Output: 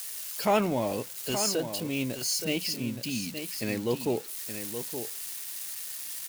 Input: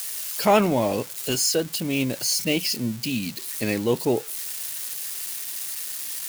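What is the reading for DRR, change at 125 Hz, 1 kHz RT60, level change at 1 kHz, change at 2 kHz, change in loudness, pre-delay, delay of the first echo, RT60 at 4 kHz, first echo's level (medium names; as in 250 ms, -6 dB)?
no reverb, -6.0 dB, no reverb, -6.0 dB, -6.0 dB, -6.0 dB, no reverb, 872 ms, no reverb, -9.0 dB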